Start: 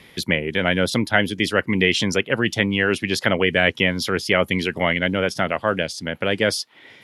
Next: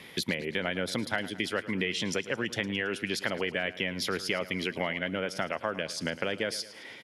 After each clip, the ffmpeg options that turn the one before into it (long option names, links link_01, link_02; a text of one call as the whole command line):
ffmpeg -i in.wav -af "highpass=frequency=150:poles=1,acompressor=threshold=-28dB:ratio=6,aecho=1:1:109|218|327|436|545:0.158|0.0856|0.0462|0.025|0.0135" out.wav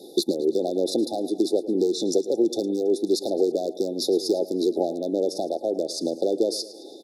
ffmpeg -i in.wav -af "aeval=exprs='clip(val(0),-1,0.075)':channel_layout=same,afftfilt=real='re*(1-between(b*sr/4096,850,3500))':imag='im*(1-between(b*sr/4096,850,3500))':win_size=4096:overlap=0.75,highpass=frequency=340:width_type=q:width=4.2,volume=5dB" out.wav